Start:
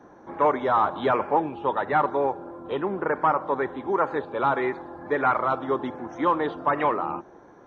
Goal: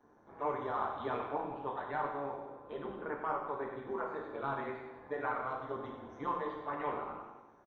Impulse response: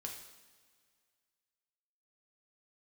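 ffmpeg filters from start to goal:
-filter_complex "[0:a]aecho=1:1:95|190|285|380|475|570|665:0.335|0.198|0.117|0.0688|0.0406|0.0239|0.0141,tremolo=f=140:d=0.824[s0];[1:a]atrim=start_sample=2205,afade=t=out:st=0.31:d=0.01,atrim=end_sample=14112[s1];[s0][s1]afir=irnorm=-1:irlink=0,volume=0.376"

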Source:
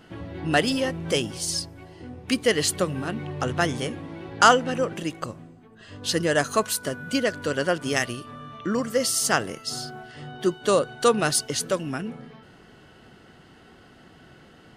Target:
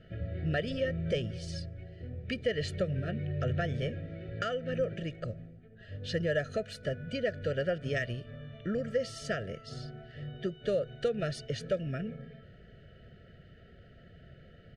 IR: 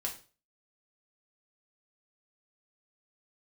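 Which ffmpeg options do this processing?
-af "lowpass=2700,acompressor=threshold=0.0794:ratio=6,asuperstop=centerf=960:order=12:qfactor=1.5,lowshelf=f=170:g=9,aecho=1:1:1.7:0.65,volume=0.447"

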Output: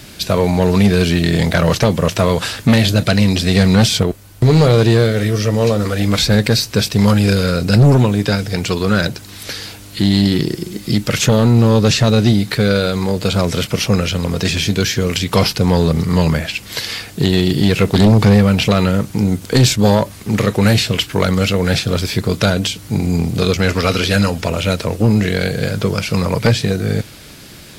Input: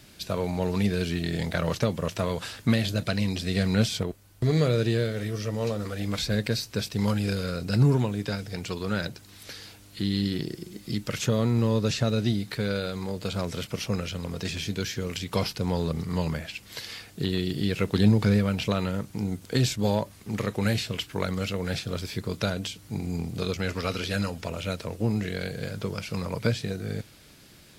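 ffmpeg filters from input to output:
-af "acontrast=54,aeval=exprs='0.631*sin(PI/2*2*val(0)/0.631)':c=same,volume=0.891"

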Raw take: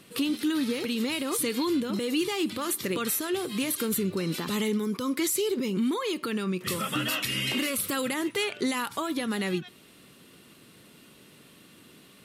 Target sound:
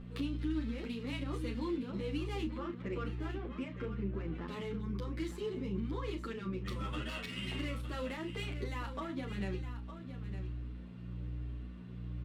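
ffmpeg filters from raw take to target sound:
-filter_complex "[0:a]asettb=1/sr,asplit=3[s0][s1][s2];[s0]atrim=end=2.464[s3];[s1]atrim=start=2.46:end=4.48,asetpts=PTS-STARTPTS,afade=t=in:d=0.004:c=qsin,afade=t=out:st=2.016:d=0.004:c=qsin,lowpass=f=2800:w=0.5412,lowpass=f=2800:w=1.3066[s4];[s2]atrim=start=4.476[s5];[s3][s4]acrossfade=d=0.004:c1=hsin:c2=qsin[s6];[s6][s5]acrossfade=d=0.004:c1=qsin:c2=hsin,acompressor=threshold=0.00316:ratio=1.5,aeval=exprs='val(0)+0.0126*(sin(2*PI*60*n/s)+sin(2*PI*2*60*n/s)/2+sin(2*PI*3*60*n/s)/3+sin(2*PI*4*60*n/s)/4+sin(2*PI*5*60*n/s)/5)':c=same,adynamicsmooth=sensitivity=7:basefreq=1900,asplit=2[s7][s8];[s8]adelay=35,volume=0.335[s9];[s7][s9]amix=inputs=2:normalize=0,aecho=1:1:910:0.282,asplit=2[s10][s11];[s11]adelay=9,afreqshift=1.1[s12];[s10][s12]amix=inputs=2:normalize=1"

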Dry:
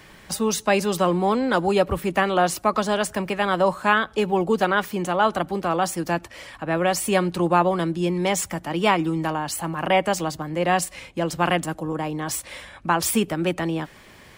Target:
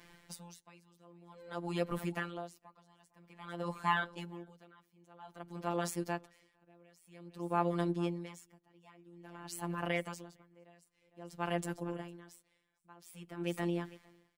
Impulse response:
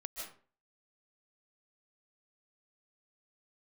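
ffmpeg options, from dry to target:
-af "aecho=1:1:455:0.119,afftfilt=real='hypot(re,im)*cos(PI*b)':imag='0':win_size=1024:overlap=0.75,aeval=exprs='val(0)*pow(10,-30*(0.5-0.5*cos(2*PI*0.51*n/s))/20)':c=same,volume=0.398"

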